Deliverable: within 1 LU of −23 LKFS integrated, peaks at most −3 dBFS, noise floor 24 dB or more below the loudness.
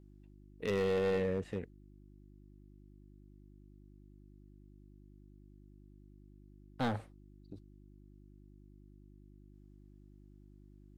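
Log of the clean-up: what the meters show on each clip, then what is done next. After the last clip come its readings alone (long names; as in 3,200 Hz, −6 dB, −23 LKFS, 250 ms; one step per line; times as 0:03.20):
share of clipped samples 0.9%; peaks flattened at −27.5 dBFS; mains hum 50 Hz; hum harmonics up to 350 Hz; level of the hum −55 dBFS; integrated loudness −35.5 LKFS; sample peak −27.5 dBFS; target loudness −23.0 LKFS
→ clipped peaks rebuilt −27.5 dBFS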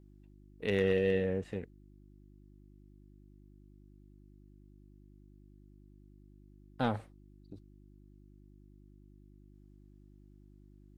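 share of clipped samples 0.0%; mains hum 50 Hz; hum harmonics up to 350 Hz; level of the hum −55 dBFS
→ hum removal 50 Hz, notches 7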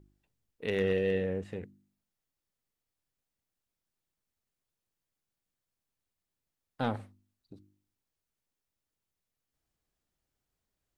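mains hum none found; integrated loudness −33.0 LKFS; sample peak −18.5 dBFS; target loudness −23.0 LKFS
→ level +10 dB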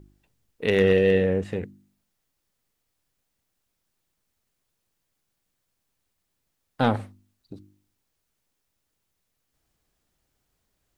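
integrated loudness −23.0 LKFS; sample peak −8.5 dBFS; background noise floor −78 dBFS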